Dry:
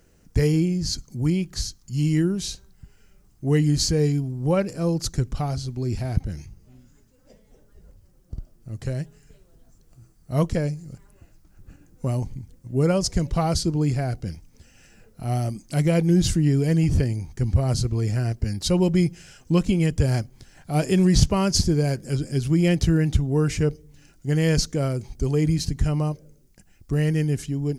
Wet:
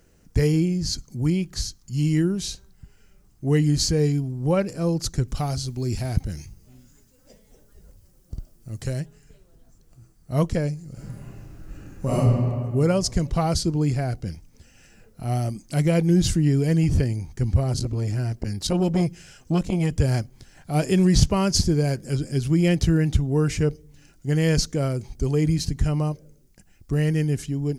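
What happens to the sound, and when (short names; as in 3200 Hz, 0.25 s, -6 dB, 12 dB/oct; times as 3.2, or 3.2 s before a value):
5.28–9 high shelf 3900 Hz +8.5 dB
10.92–12.15 reverb throw, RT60 2.1 s, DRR -9.5 dB
17.63–19.91 core saturation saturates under 340 Hz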